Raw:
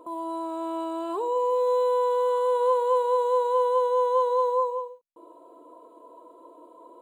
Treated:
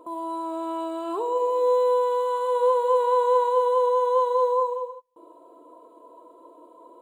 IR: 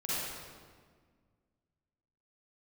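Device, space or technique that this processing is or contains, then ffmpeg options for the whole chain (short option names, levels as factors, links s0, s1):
keyed gated reverb: -filter_complex "[0:a]asettb=1/sr,asplit=3[s0][s1][s2];[s0]atrim=end=3.004[s3];[s1]atrim=start=3:end=3.49,asetpts=PTS-STARTPTS,afade=t=in:d=0.004:c=qsin,afade=t=out:st=0.486:d=0.004:c=qsin,equalizer=f=1700:w=0.96:g=5.5[s4];[s2]atrim=start=3.486[s5];[s3][s4]acrossfade=d=0.004:c1=hsin:c2=qsin[s6];[s6][s5]acrossfade=d=0.004:c1=qsin:c2=hsin,asplit=3[s7][s8][s9];[1:a]atrim=start_sample=2205[s10];[s8][s10]afir=irnorm=-1:irlink=0[s11];[s9]apad=whole_len=309242[s12];[s11][s12]sidechaingate=range=0.0224:threshold=0.00562:ratio=16:detection=peak,volume=0.188[s13];[s7][s13]amix=inputs=2:normalize=0"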